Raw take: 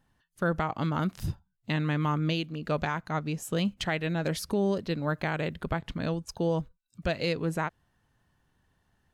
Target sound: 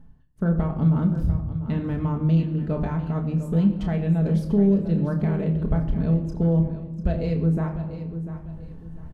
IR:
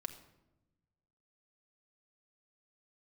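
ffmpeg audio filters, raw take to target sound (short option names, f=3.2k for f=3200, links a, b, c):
-filter_complex "[0:a]asplit=2[a][b];[b]adelay=30,volume=-8dB[c];[a][c]amix=inputs=2:normalize=0[d];[1:a]atrim=start_sample=2205,asetrate=41454,aresample=44100[e];[d][e]afir=irnorm=-1:irlink=0,asplit=2[f][g];[g]asoftclip=type=tanh:threshold=-31dB,volume=-10dB[h];[f][h]amix=inputs=2:normalize=0,tiltshelf=f=1.1k:g=9,areverse,acompressor=mode=upward:threshold=-27dB:ratio=2.5,areverse,lowshelf=f=170:g=11.5,aecho=1:1:695|1390|2085:0.237|0.0688|0.0199,volume=-6dB"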